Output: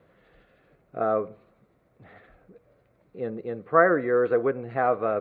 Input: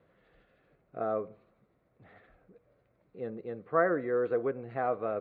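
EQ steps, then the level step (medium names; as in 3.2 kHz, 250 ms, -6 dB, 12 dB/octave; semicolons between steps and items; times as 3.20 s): dynamic bell 1.5 kHz, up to +3 dB, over -42 dBFS, Q 0.95; +6.5 dB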